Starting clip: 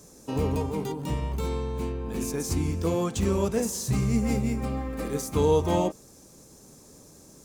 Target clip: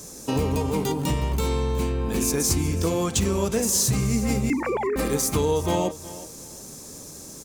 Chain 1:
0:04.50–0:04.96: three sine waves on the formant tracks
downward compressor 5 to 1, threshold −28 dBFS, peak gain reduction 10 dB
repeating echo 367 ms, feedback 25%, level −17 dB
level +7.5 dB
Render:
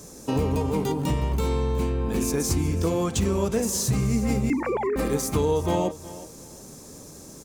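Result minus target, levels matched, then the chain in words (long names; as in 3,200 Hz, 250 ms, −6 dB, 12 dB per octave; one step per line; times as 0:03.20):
4,000 Hz band −3.5 dB
0:04.50–0:04.96: three sine waves on the formant tracks
downward compressor 5 to 1, threshold −28 dBFS, peak gain reduction 10 dB
high-shelf EQ 2,200 Hz +6 dB
repeating echo 367 ms, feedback 25%, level −17 dB
level +7.5 dB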